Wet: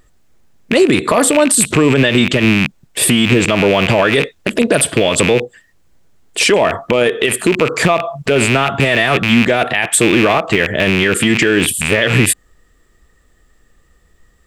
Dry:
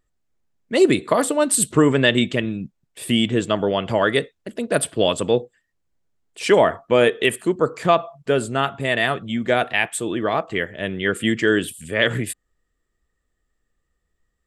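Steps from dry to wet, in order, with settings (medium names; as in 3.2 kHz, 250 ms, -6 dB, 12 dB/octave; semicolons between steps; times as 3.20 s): rattle on loud lows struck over -35 dBFS, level -16 dBFS; compression, threshold -23 dBFS, peak gain reduction 13 dB; loudness maximiser +21.5 dB; trim -1 dB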